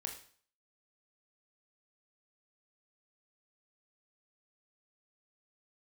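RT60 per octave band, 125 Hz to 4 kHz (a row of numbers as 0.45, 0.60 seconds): 0.50, 0.50, 0.50, 0.50, 0.45, 0.50 seconds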